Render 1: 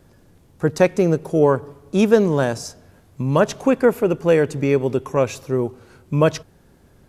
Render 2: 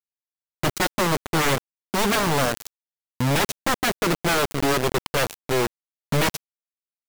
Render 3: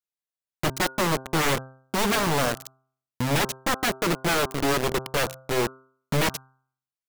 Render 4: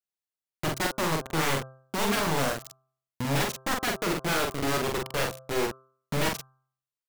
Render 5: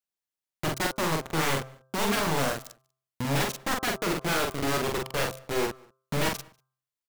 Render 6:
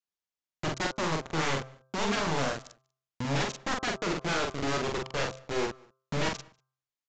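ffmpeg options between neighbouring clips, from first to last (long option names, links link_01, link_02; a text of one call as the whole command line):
ffmpeg -i in.wav -af "equalizer=frequency=1900:width=4.4:gain=-9,aeval=exprs='0.133*(abs(mod(val(0)/0.133+3,4)-2)-1)':channel_layout=same,acrusher=bits=3:mix=0:aa=0.000001" out.wav
ffmpeg -i in.wav -af "bandreject=frequency=131.3:width_type=h:width=4,bandreject=frequency=262.6:width_type=h:width=4,bandreject=frequency=393.9:width_type=h:width=4,bandreject=frequency=525.2:width_type=h:width=4,bandreject=frequency=656.5:width_type=h:width=4,bandreject=frequency=787.8:width_type=h:width=4,bandreject=frequency=919.1:width_type=h:width=4,bandreject=frequency=1050.4:width_type=h:width=4,bandreject=frequency=1181.7:width_type=h:width=4,bandreject=frequency=1313:width_type=h:width=4,bandreject=frequency=1444.3:width_type=h:width=4,bandreject=frequency=1575.6:width_type=h:width=4,volume=-2dB" out.wav
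ffmpeg -i in.wav -filter_complex "[0:a]asplit=2[link_01][link_02];[link_02]adelay=44,volume=-3dB[link_03];[link_01][link_03]amix=inputs=2:normalize=0,volume=-5dB" out.wav
ffmpeg -i in.wav -filter_complex "[0:a]asplit=2[link_01][link_02];[link_02]adelay=192.4,volume=-27dB,highshelf=frequency=4000:gain=-4.33[link_03];[link_01][link_03]amix=inputs=2:normalize=0" out.wav
ffmpeg -i in.wav -af "aresample=16000,aresample=44100,volume=-2.5dB" out.wav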